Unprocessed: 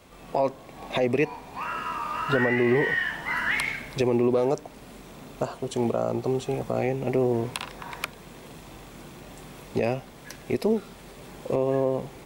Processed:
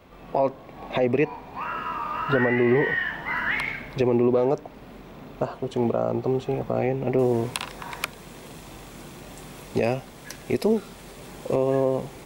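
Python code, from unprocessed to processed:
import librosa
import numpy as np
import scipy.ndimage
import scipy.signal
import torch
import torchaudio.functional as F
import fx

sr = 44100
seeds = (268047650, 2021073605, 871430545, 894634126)

y = fx.peak_eq(x, sr, hz=8900.0, db=fx.steps((0.0, -14.5), (7.19, 2.5)), octaves=1.7)
y = y * 10.0 ** (2.0 / 20.0)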